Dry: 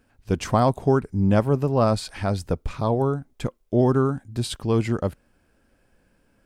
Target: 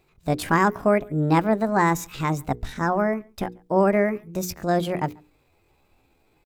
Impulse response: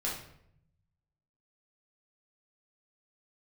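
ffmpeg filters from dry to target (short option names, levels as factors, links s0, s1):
-filter_complex "[0:a]asetrate=68011,aresample=44100,atempo=0.64842,bandreject=f=60:t=h:w=6,bandreject=f=120:t=h:w=6,bandreject=f=180:t=h:w=6,bandreject=f=240:t=h:w=6,bandreject=f=300:t=h:w=6,bandreject=f=360:t=h:w=6,bandreject=f=420:t=h:w=6,bandreject=f=480:t=h:w=6,asplit=2[s0][s1];[s1]adelay=139.9,volume=0.0398,highshelf=f=4000:g=-3.15[s2];[s0][s2]amix=inputs=2:normalize=0"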